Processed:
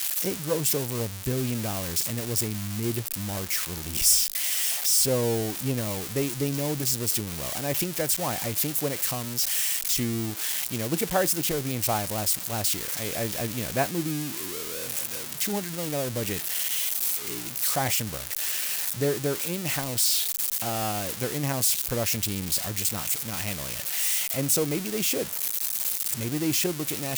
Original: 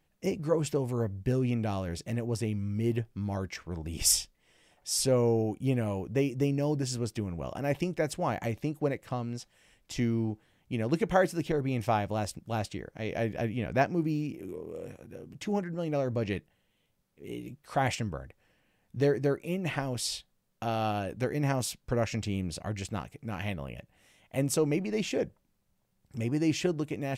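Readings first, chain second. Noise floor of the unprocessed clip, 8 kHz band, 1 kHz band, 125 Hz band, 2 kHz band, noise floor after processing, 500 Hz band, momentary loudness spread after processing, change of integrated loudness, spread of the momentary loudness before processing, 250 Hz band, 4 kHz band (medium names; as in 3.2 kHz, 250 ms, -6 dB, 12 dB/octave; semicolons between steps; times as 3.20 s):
-73 dBFS, +11.5 dB, +1.0 dB, 0.0 dB, +4.5 dB, -35 dBFS, 0.0 dB, 6 LU, +5.5 dB, 12 LU, 0.0 dB, +10.0 dB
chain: zero-crossing glitches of -17.5 dBFS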